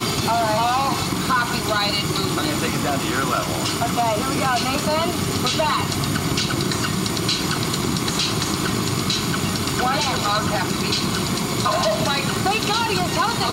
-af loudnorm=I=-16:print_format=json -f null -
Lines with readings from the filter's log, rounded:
"input_i" : "-20.5",
"input_tp" : "-6.3",
"input_lra" : "0.7",
"input_thresh" : "-30.5",